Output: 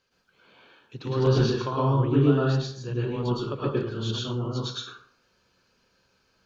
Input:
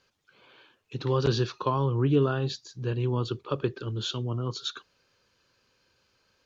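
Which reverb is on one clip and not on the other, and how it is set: plate-style reverb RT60 0.57 s, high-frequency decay 0.6×, pre-delay 95 ms, DRR -6 dB; gain -5 dB

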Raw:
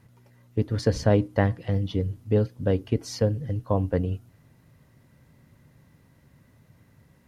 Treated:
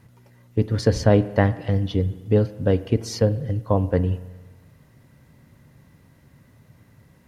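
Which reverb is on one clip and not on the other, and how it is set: spring tank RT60 1.3 s, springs 44 ms, chirp 55 ms, DRR 15 dB; gain +4 dB

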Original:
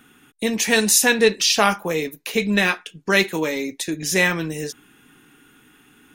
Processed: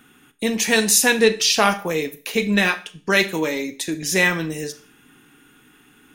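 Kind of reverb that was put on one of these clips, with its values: Schroeder reverb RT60 0.4 s, combs from 28 ms, DRR 13 dB

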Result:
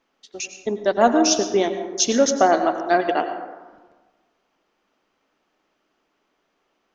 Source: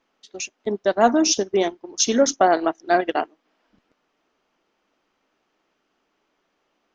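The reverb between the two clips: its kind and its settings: plate-style reverb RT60 1.3 s, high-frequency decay 0.4×, pre-delay 80 ms, DRR 8 dB

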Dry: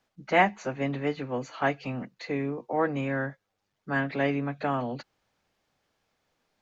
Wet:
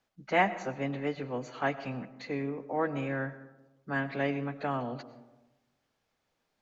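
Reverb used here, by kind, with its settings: digital reverb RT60 1.1 s, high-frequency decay 0.35×, pre-delay 65 ms, DRR 14 dB; gain -4 dB

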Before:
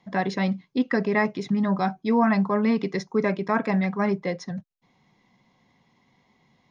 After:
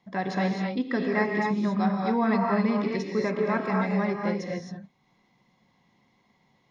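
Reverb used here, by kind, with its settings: non-linear reverb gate 0.29 s rising, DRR -0.5 dB; gain -5 dB

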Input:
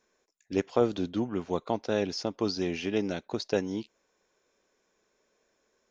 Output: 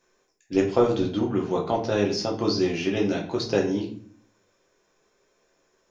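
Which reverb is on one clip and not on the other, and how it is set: shoebox room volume 56 m³, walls mixed, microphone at 0.77 m; gain +2 dB

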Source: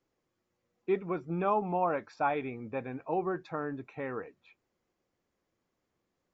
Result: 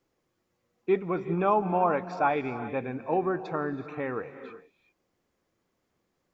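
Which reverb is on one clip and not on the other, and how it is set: non-linear reverb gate 0.41 s rising, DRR 11.5 dB; gain +4.5 dB

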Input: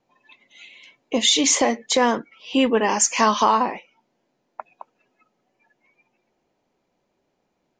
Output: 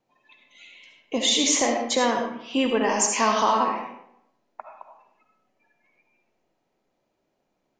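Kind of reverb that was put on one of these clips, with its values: digital reverb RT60 0.76 s, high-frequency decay 0.65×, pre-delay 30 ms, DRR 2.5 dB; gain -4.5 dB

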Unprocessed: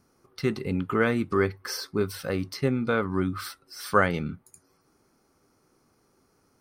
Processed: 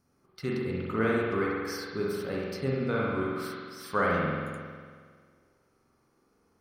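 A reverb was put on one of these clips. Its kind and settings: spring tank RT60 1.8 s, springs 45 ms, chirp 25 ms, DRR -4 dB; gain -8 dB

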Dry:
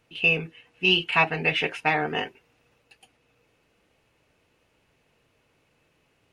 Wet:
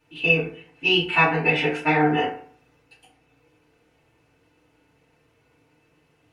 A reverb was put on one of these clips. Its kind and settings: FDN reverb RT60 0.51 s, low-frequency decay 1.05×, high-frequency decay 0.5×, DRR -9 dB; gain -6.5 dB

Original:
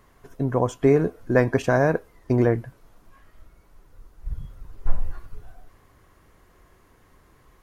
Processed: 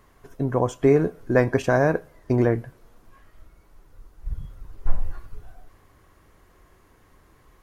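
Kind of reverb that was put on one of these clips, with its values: two-slope reverb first 0.3 s, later 2.3 s, from -27 dB, DRR 17 dB

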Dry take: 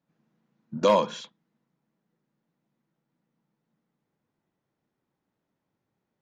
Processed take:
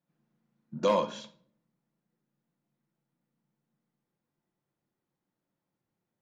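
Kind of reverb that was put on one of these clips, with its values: shoebox room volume 760 m³, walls furnished, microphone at 0.87 m; gain -6 dB

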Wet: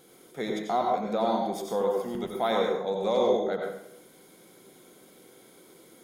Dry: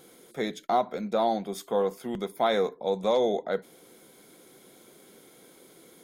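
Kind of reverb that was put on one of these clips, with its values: plate-style reverb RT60 0.72 s, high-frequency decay 0.65×, pre-delay 75 ms, DRR 0 dB; gain -3 dB

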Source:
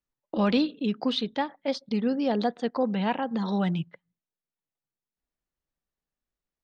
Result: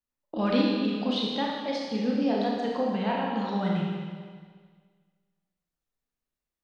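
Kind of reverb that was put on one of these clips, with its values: Schroeder reverb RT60 1.7 s, combs from 25 ms, DRR -3 dB; gain -4.5 dB

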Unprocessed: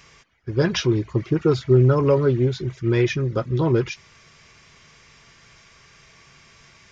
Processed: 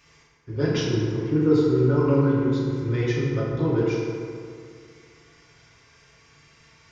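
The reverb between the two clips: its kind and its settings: FDN reverb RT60 2.3 s, low-frequency decay 0.95×, high-frequency decay 0.5×, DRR -6.5 dB; gain -10.5 dB

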